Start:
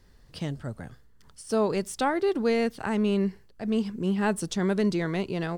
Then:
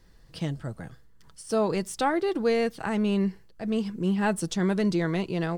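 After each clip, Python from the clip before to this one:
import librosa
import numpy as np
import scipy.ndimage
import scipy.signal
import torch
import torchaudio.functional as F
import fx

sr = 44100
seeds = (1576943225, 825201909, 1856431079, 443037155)

y = x + 0.31 * np.pad(x, (int(6.1 * sr / 1000.0), 0))[:len(x)]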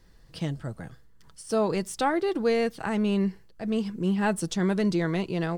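y = x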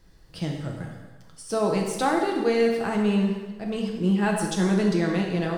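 y = fx.rev_plate(x, sr, seeds[0], rt60_s=1.3, hf_ratio=0.9, predelay_ms=0, drr_db=0.5)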